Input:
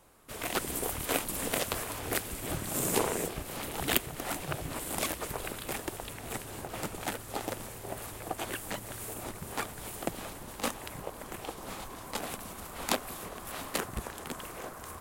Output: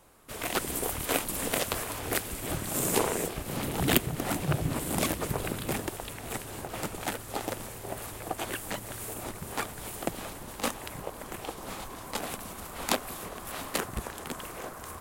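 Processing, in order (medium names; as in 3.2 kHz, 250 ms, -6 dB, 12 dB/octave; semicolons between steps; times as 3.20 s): 3.46–5.87 s: peaking EQ 150 Hz +9.5 dB 2.5 oct; trim +2 dB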